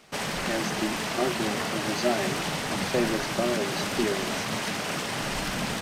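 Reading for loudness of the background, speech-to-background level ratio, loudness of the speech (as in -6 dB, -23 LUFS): -29.0 LUFS, -2.5 dB, -31.5 LUFS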